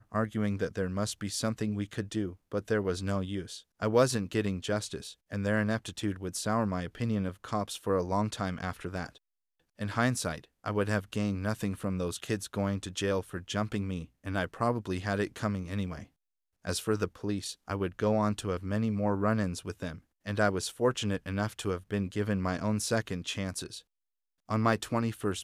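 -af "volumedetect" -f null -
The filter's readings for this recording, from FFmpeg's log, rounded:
mean_volume: -32.0 dB
max_volume: -12.2 dB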